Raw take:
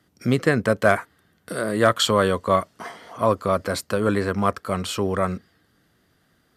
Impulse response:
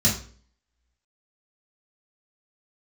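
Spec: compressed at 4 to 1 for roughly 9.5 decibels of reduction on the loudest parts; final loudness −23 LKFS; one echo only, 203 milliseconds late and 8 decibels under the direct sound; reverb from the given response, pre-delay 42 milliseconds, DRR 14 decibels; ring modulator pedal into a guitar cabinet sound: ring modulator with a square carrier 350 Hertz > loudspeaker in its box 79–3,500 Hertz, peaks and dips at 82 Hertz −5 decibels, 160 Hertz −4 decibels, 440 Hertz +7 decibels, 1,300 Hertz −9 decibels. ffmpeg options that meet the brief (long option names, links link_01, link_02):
-filter_complex "[0:a]acompressor=threshold=-24dB:ratio=4,aecho=1:1:203:0.398,asplit=2[link_01][link_02];[1:a]atrim=start_sample=2205,adelay=42[link_03];[link_02][link_03]afir=irnorm=-1:irlink=0,volume=-27dB[link_04];[link_01][link_04]amix=inputs=2:normalize=0,aeval=exprs='val(0)*sgn(sin(2*PI*350*n/s))':channel_layout=same,highpass=79,equalizer=frequency=82:width_type=q:width=4:gain=-5,equalizer=frequency=160:width_type=q:width=4:gain=-4,equalizer=frequency=440:width_type=q:width=4:gain=7,equalizer=frequency=1300:width_type=q:width=4:gain=-9,lowpass=frequency=3500:width=0.5412,lowpass=frequency=3500:width=1.3066,volume=4.5dB"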